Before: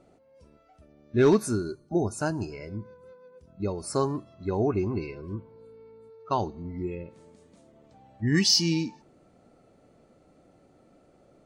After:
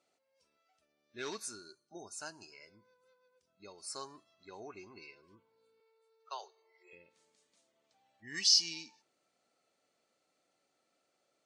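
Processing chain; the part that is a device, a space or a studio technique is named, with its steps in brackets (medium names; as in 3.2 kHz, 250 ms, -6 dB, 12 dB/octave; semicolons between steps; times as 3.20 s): piezo pickup straight into a mixer (low-pass 5.6 kHz 12 dB/octave; differentiator); 5.80–6.93 s: steep high-pass 390 Hz 96 dB/octave; trim +1.5 dB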